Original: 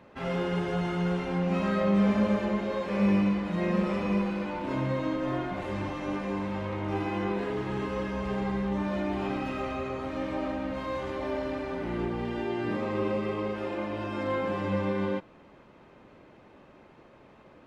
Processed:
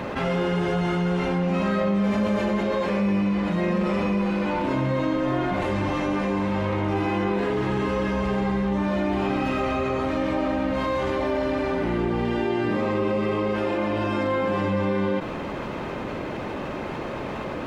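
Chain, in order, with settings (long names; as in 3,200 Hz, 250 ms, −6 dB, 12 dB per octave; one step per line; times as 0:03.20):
0:02.04–0:02.63: high-shelf EQ 5,200 Hz +5.5 dB
envelope flattener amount 70%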